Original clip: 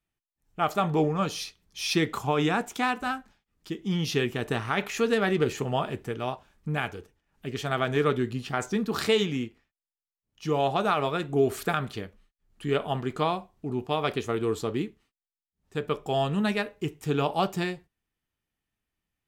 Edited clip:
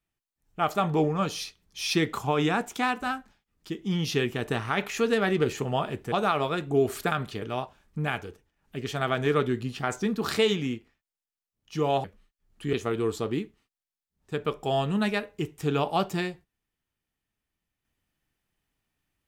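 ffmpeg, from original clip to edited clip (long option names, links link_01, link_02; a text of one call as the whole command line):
ffmpeg -i in.wav -filter_complex "[0:a]asplit=5[link_01][link_02][link_03][link_04][link_05];[link_01]atrim=end=6.122[link_06];[link_02]atrim=start=10.738:end=12.042[link_07];[link_03]atrim=start=6.118:end=10.742[link_08];[link_04]atrim=start=12.038:end=12.732[link_09];[link_05]atrim=start=14.158[link_10];[link_06][link_07]acrossfade=duration=0.004:curve1=hsin:curve2=hsin[link_11];[link_11][link_08]acrossfade=duration=0.004:curve1=hsin:curve2=hsin[link_12];[link_12][link_09]acrossfade=duration=0.004:curve1=hsin:curve2=hsin[link_13];[link_13][link_10]acrossfade=duration=0.004:curve1=hsin:curve2=hsin" out.wav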